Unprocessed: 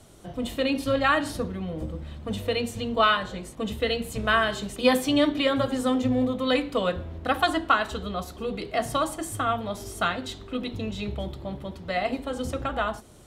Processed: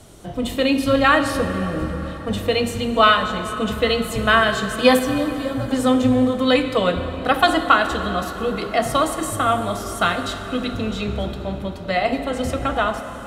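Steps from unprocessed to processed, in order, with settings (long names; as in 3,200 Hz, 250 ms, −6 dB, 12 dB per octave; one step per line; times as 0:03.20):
0:04.99–0:05.71: drawn EQ curve 110 Hz 0 dB, 2,800 Hz −20 dB, 6,000 Hz −6 dB
dense smooth reverb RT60 4.9 s, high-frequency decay 0.65×, DRR 8 dB
level +6.5 dB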